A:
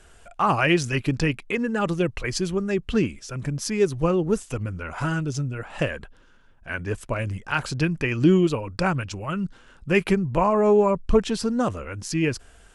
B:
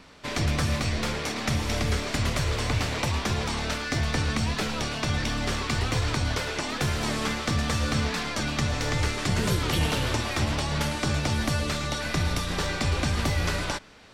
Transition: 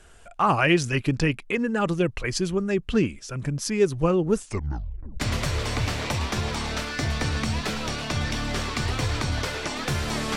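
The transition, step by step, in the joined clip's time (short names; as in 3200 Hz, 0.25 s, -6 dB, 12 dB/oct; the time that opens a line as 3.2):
A
4.42 tape stop 0.78 s
5.2 switch to B from 2.13 s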